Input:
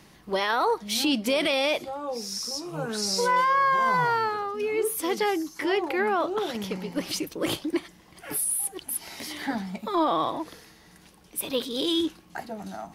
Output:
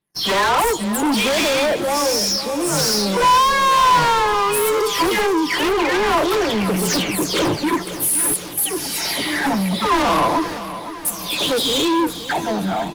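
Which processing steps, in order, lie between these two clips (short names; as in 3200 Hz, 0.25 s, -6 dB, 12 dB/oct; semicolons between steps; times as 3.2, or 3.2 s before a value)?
spectral delay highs early, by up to 0.315 s; gate -48 dBFS, range -29 dB; spectral gain 0.6–1.12, 1400–6700 Hz -29 dB; in parallel at -7 dB: sine folder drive 14 dB, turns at -11.5 dBFS; on the sum: sample leveller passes 3; dynamic EQ 1000 Hz, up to +7 dB, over -30 dBFS, Q 6.5; on a send: feedback echo 0.516 s, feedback 55%, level -13 dB; on the sum: gain -6 dB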